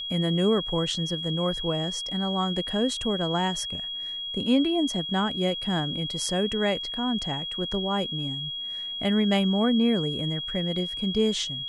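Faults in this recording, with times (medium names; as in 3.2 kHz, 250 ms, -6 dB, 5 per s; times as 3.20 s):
whine 3.3 kHz -31 dBFS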